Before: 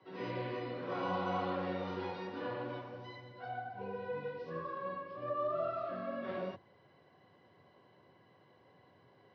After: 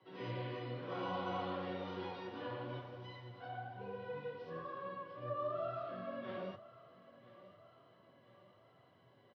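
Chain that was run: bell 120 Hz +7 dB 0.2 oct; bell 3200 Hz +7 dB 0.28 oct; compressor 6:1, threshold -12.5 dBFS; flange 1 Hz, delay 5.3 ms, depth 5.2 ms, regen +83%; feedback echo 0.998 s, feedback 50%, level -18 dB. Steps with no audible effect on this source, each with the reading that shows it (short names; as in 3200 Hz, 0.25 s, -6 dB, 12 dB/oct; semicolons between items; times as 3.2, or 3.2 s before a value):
compressor, threshold -12.5 dBFS: input peak -23.5 dBFS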